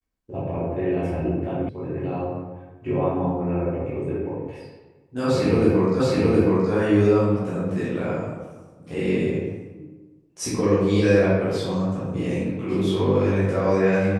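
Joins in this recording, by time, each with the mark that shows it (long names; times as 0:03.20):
0:01.69: cut off before it has died away
0:06.00: the same again, the last 0.72 s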